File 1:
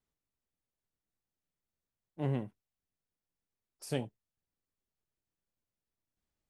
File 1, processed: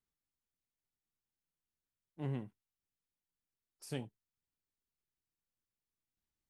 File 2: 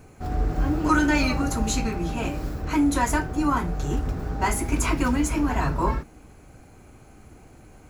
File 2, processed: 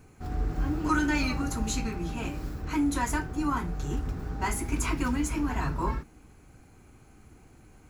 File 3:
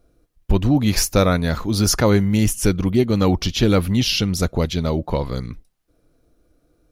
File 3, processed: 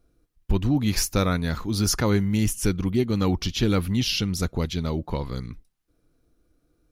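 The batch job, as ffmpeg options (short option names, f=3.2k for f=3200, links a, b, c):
-af "equalizer=f=600:w=2.1:g=-6,volume=-5dB"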